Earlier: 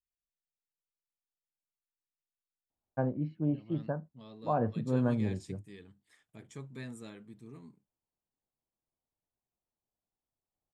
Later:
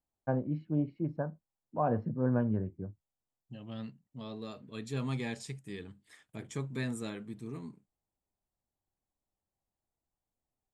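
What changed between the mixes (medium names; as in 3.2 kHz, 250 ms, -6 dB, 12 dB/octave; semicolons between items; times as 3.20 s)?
first voice: entry -2.70 s; second voice +8.0 dB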